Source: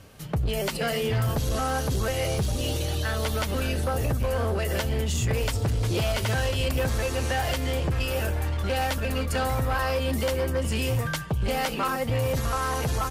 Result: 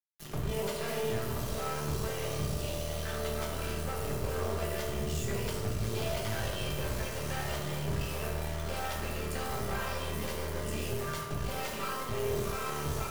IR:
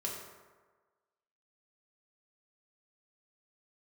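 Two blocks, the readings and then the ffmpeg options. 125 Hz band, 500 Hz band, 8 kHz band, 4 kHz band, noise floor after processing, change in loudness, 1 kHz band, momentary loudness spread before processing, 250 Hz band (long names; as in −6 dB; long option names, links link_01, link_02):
−9.5 dB, −7.0 dB, −6.0 dB, −8.0 dB, −37 dBFS, −8.0 dB, −8.0 dB, 2 LU, −7.5 dB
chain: -filter_complex "[0:a]acrusher=bits=3:dc=4:mix=0:aa=0.000001[link_01];[1:a]atrim=start_sample=2205[link_02];[link_01][link_02]afir=irnorm=-1:irlink=0,volume=-6dB"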